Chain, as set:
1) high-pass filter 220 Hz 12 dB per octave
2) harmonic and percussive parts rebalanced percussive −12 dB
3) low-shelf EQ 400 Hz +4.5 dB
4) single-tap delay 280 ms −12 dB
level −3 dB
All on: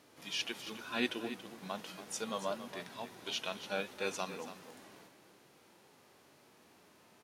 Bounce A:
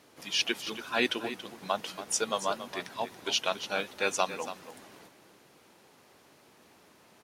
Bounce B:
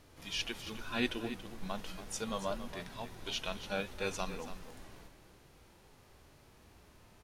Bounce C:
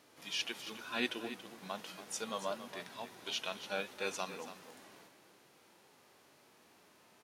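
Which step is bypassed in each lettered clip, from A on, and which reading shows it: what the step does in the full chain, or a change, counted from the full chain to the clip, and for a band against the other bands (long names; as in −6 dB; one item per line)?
2, 125 Hz band −6.0 dB
1, 125 Hz band +7.0 dB
3, 125 Hz band −3.5 dB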